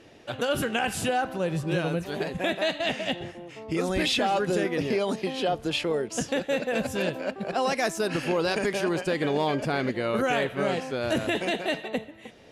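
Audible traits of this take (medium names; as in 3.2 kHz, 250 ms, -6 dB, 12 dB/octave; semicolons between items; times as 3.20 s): noise floor -49 dBFS; spectral tilt -4.5 dB/octave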